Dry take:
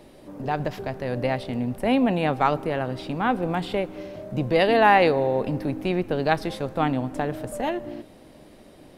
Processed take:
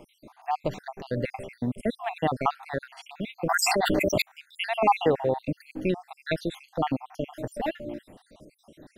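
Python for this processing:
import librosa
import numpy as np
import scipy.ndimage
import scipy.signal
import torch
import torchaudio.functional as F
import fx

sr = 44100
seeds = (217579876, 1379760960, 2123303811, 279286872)

y = fx.spec_dropout(x, sr, seeds[0], share_pct=65)
y = fx.env_flatten(y, sr, amount_pct=100, at=(3.49, 4.22))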